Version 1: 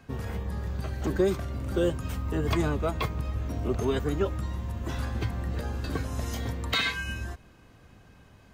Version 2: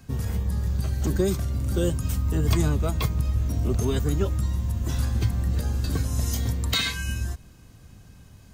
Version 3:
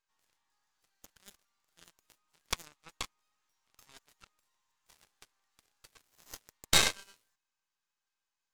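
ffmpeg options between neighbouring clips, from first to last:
-af "bass=f=250:g=10,treble=f=4k:g=14,volume=-2.5dB"
-af "afftfilt=real='re*between(b*sr/4096,780,7900)':imag='im*between(b*sr/4096,780,7900)':win_size=4096:overlap=0.75,aeval=exprs='max(val(0),0)':c=same,aeval=exprs='0.237*(cos(1*acos(clip(val(0)/0.237,-1,1)))-cos(1*PI/2))+0.106*(cos(2*acos(clip(val(0)/0.237,-1,1)))-cos(2*PI/2))+0.0211*(cos(3*acos(clip(val(0)/0.237,-1,1)))-cos(3*PI/2))+0.0266*(cos(7*acos(clip(val(0)/0.237,-1,1)))-cos(7*PI/2))':c=same,volume=3dB"

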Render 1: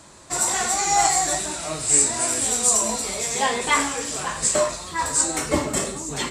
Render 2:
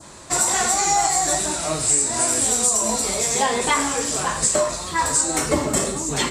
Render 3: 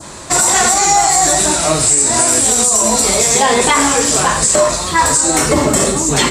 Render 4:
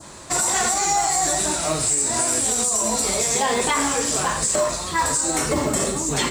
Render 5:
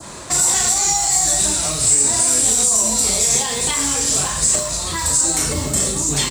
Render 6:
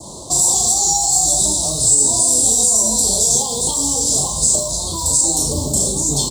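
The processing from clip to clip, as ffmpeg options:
-af "adynamicequalizer=threshold=0.0126:dfrequency=2500:dqfactor=0.98:tfrequency=2500:tqfactor=0.98:attack=5:release=100:ratio=0.375:range=2:mode=cutabove:tftype=bell,acompressor=threshold=-21dB:ratio=6,volume=5.5dB"
-af "alimiter=level_in=11.5dB:limit=-1dB:release=50:level=0:latency=1,volume=-1dB"
-af "acrusher=bits=7:mode=log:mix=0:aa=0.000001,volume=-9dB"
-filter_complex "[0:a]acrossover=split=160|3000[a][b][c];[b]acompressor=threshold=-33dB:ratio=6[d];[a][d][c]amix=inputs=3:normalize=0,asplit=2[e][f];[f]adelay=36,volume=-6.5dB[g];[e][g]amix=inputs=2:normalize=0,volume=5.5dB"
-af "asuperstop=centerf=1900:order=8:qfactor=0.69,volume=1.5dB"

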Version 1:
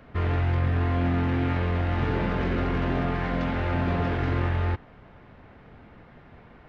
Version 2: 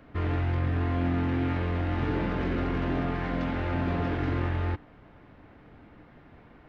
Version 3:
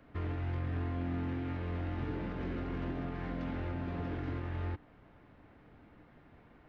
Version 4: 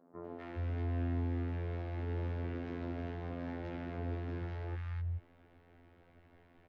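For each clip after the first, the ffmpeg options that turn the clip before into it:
-af "equalizer=f=300:t=o:w=0.23:g=8.5,volume=-3.5dB"
-filter_complex "[0:a]alimiter=limit=-21dB:level=0:latency=1:release=173,acrossover=split=480[a][b];[b]acompressor=threshold=-38dB:ratio=6[c];[a][c]amix=inputs=2:normalize=0,volume=-6.5dB"
-filter_complex "[0:a]afftfilt=real='hypot(re,im)*cos(PI*b)':imag='0':win_size=2048:overlap=0.75,acrossover=split=170|1100[a][b][c];[c]adelay=250[d];[a]adelay=420[e];[e][b][d]amix=inputs=3:normalize=0,volume=1.5dB"

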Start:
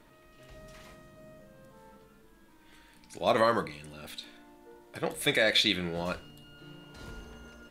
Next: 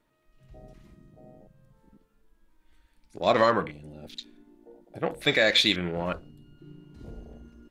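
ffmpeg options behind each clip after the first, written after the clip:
-af "afwtdn=0.00708,volume=3.5dB"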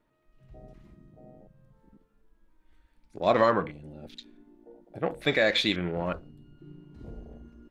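-af "highshelf=f=2.9k:g=-9"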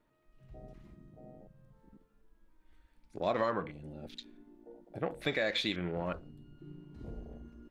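-af "acompressor=threshold=-32dB:ratio=2,volume=-1.5dB"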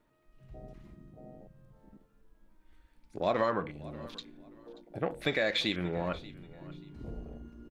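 -af "aecho=1:1:583|1166:0.1|0.024,volume=2.5dB"

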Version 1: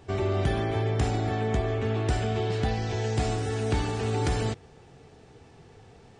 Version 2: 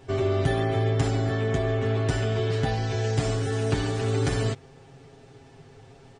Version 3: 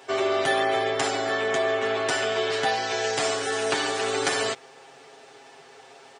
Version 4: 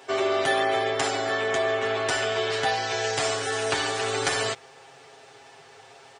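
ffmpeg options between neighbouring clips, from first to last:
-af "aecho=1:1:7.4:0.75"
-af "highpass=620,volume=8.5dB"
-af "asubboost=boost=7:cutoff=88"

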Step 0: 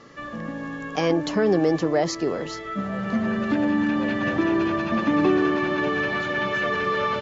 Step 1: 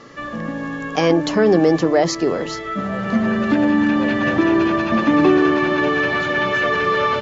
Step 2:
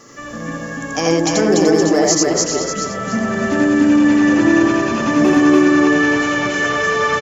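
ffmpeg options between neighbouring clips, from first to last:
-af "bandreject=f=50:t=h:w=6,bandreject=f=100:t=h:w=6,bandreject=f=150:t=h:w=6,bandreject=f=200:t=h:w=6,volume=6dB"
-filter_complex "[0:a]asplit=2[a][b];[b]aecho=0:1:296:0.422[c];[a][c]amix=inputs=2:normalize=0,aexciter=amount=8:drive=4.3:freq=5.6k,asplit=2[d][e];[e]aecho=0:1:84.55|288.6:0.891|0.794[f];[d][f]amix=inputs=2:normalize=0,volume=-3dB"

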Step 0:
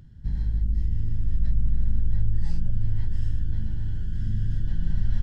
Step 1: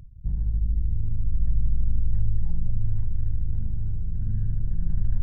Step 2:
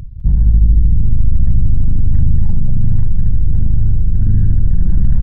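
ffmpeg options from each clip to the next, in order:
-af "anlmdn=1.58,equalizer=f=260:w=2.8:g=-7,areverse,acompressor=mode=upward:threshold=-21dB:ratio=2.5,areverse"
-af "aresample=11025,aeval=exprs='0.299*sin(PI/2*2*val(0)/0.299)':c=same,aresample=44100,aecho=1:1:203:0.126,volume=6.5dB"

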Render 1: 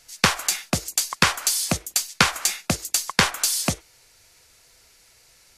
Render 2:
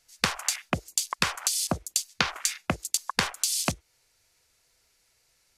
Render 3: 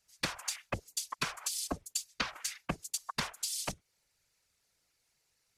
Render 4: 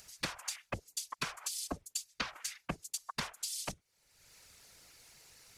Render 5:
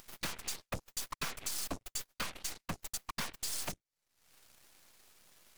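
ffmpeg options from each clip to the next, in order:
-af "afwtdn=0.0282,acompressor=threshold=-28dB:ratio=4,volume=4dB"
-af "afftfilt=real='hypot(re,im)*cos(2*PI*random(0))':imag='hypot(re,im)*sin(2*PI*random(1))':win_size=512:overlap=0.75,volume=-3dB"
-af "acompressor=mode=upward:threshold=-39dB:ratio=2.5,volume=-3dB"
-af "volume=35dB,asoftclip=hard,volume=-35dB,aeval=exprs='0.0188*(cos(1*acos(clip(val(0)/0.0188,-1,1)))-cos(1*PI/2))+0.00531*(cos(3*acos(clip(val(0)/0.0188,-1,1)))-cos(3*PI/2))+0.00668*(cos(6*acos(clip(val(0)/0.0188,-1,1)))-cos(6*PI/2))+0.000119*(cos(7*acos(clip(val(0)/0.0188,-1,1)))-cos(7*PI/2))':c=same,volume=2dB"

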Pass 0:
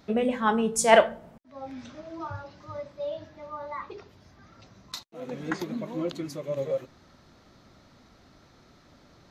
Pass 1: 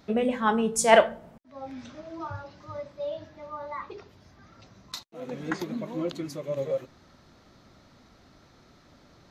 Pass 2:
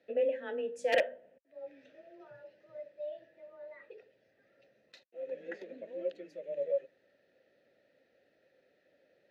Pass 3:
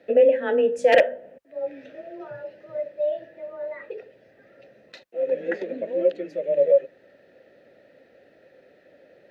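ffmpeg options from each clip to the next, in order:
-af anull
-filter_complex "[0:a]aeval=exprs='(mod(2.51*val(0)+1,2)-1)/2.51':c=same,afreqshift=21,asplit=3[a][b][c];[a]bandpass=f=530:t=q:w=8,volume=0dB[d];[b]bandpass=f=1.84k:t=q:w=8,volume=-6dB[e];[c]bandpass=f=2.48k:t=q:w=8,volume=-9dB[f];[d][e][f]amix=inputs=3:normalize=0"
-filter_complex "[0:a]highshelf=f=2.8k:g=-9,asplit=2[a][b];[b]alimiter=level_in=3dB:limit=-24dB:level=0:latency=1:release=307,volume=-3dB,volume=2.5dB[c];[a][c]amix=inputs=2:normalize=0,volume=9dB"

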